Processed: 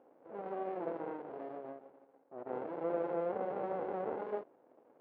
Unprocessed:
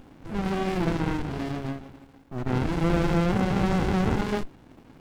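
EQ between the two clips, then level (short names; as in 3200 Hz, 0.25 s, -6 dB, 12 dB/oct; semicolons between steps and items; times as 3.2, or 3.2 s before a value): ladder band-pass 600 Hz, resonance 50%; air absorption 120 m; +2.0 dB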